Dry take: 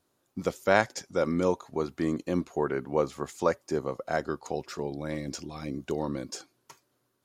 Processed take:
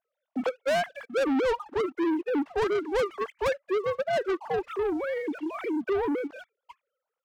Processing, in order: sine-wave speech; soft clip -24.5 dBFS, distortion -11 dB; sample leveller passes 2; gain +2.5 dB

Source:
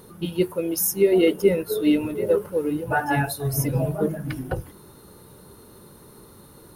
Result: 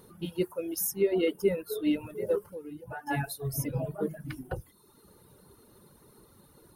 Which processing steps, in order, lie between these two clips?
reverb removal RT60 0.9 s; 2.41–3.07 compressor 2:1, threshold -38 dBFS, peak gain reduction 11 dB; gain -7.5 dB

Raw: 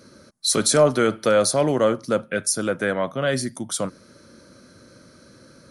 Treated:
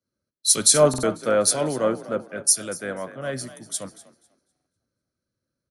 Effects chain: high shelf 9700 Hz +7.5 dB; frequency-shifting echo 0.249 s, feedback 48%, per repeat +36 Hz, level -11 dB; stuck buffer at 0.89/4.52, samples 2048, times 2; three-band expander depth 100%; gain -6.5 dB

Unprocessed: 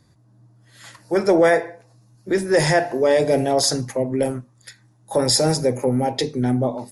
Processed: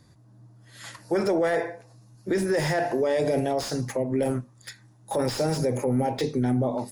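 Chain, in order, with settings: 3.39–4.16 compressor, threshold -23 dBFS, peak gain reduction 9 dB; limiter -17.5 dBFS, peak gain reduction 11.5 dB; slew limiter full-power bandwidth 110 Hz; gain +1 dB

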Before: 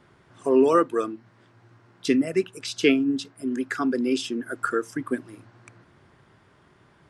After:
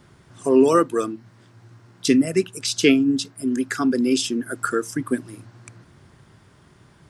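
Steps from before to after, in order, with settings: tone controls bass +7 dB, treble +10 dB; gain +1.5 dB

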